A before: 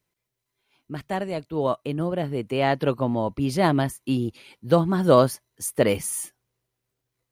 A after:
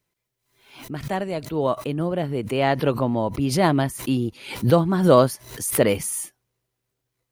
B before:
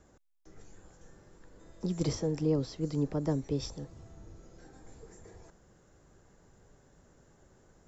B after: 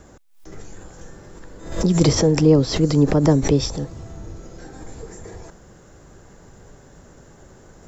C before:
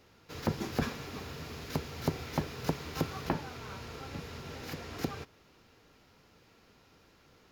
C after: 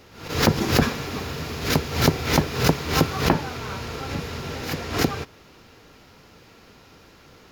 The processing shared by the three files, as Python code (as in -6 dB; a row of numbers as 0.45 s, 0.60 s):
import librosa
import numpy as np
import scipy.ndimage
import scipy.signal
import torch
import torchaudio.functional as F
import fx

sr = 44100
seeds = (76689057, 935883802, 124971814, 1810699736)

y = fx.pre_swell(x, sr, db_per_s=96.0)
y = y * 10.0 ** (-3 / 20.0) / np.max(np.abs(y))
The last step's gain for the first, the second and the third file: +1.5 dB, +14.5 dB, +12.0 dB